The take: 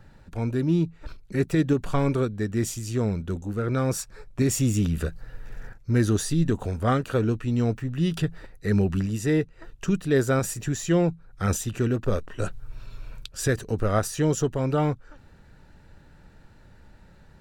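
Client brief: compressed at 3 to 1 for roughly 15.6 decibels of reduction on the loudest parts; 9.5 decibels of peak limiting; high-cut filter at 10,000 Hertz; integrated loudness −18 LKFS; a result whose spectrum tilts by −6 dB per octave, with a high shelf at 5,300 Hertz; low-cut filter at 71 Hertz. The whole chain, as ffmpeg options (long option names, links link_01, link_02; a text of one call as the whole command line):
ffmpeg -i in.wav -af "highpass=71,lowpass=10000,highshelf=frequency=5300:gain=-5,acompressor=threshold=-40dB:ratio=3,volume=24dB,alimiter=limit=-7.5dB:level=0:latency=1" out.wav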